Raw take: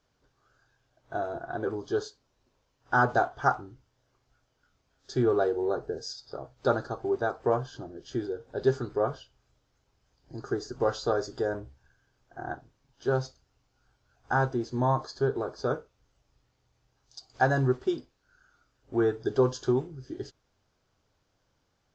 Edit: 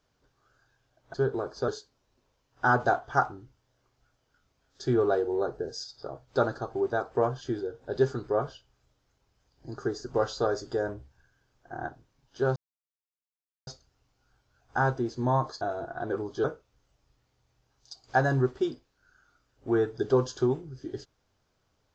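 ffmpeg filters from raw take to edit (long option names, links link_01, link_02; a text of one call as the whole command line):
ffmpeg -i in.wav -filter_complex "[0:a]asplit=7[link_01][link_02][link_03][link_04][link_05][link_06][link_07];[link_01]atrim=end=1.142[link_08];[link_02]atrim=start=15.158:end=15.702[link_09];[link_03]atrim=start=1.968:end=7.702[link_10];[link_04]atrim=start=8.068:end=13.22,asetpts=PTS-STARTPTS,afade=type=out:start_time=5.148:duration=0.004:curve=hsin,apad=pad_dur=1.11[link_11];[link_05]atrim=start=13.22:end=15.162,asetpts=PTS-STARTPTS,afade=type=in:duration=0.004:curve=hsin[link_12];[link_06]atrim=start=1.138:end=1.972[link_13];[link_07]atrim=start=15.698[link_14];[link_08][link_09]acrossfade=duration=0.004:curve1=hsin:curve2=hsin[link_15];[link_15][link_10]acrossfade=duration=0.004:curve1=hsin:curve2=hsin[link_16];[link_11][link_12]concat=n=2:v=0:a=1[link_17];[link_16][link_17]acrossfade=duration=0.004:curve1=hsin:curve2=hsin[link_18];[link_18][link_13]acrossfade=duration=0.004:curve1=hsin:curve2=hsin[link_19];[link_19][link_14]acrossfade=duration=0.004:curve1=hsin:curve2=hsin" out.wav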